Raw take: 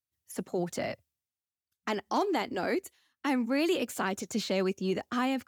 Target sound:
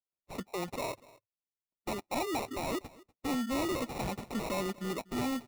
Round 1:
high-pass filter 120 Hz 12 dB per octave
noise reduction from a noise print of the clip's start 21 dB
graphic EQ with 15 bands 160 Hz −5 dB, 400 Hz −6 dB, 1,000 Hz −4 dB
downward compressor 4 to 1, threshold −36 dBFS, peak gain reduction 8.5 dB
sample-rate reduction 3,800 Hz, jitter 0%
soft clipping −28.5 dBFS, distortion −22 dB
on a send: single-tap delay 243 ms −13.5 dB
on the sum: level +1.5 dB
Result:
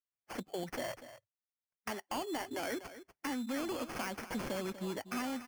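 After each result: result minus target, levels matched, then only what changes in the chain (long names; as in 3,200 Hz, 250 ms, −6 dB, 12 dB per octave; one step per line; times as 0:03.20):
downward compressor: peak gain reduction +8.5 dB; echo-to-direct +8.5 dB; sample-rate reduction: distortion −6 dB
remove: downward compressor 4 to 1, threshold −36 dBFS, peak gain reduction 8.5 dB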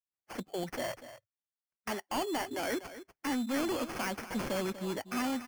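echo-to-direct +8.5 dB; sample-rate reduction: distortion −6 dB
change: single-tap delay 243 ms −22 dB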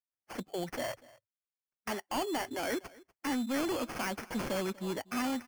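sample-rate reduction: distortion −6 dB
change: sample-rate reduction 1,600 Hz, jitter 0%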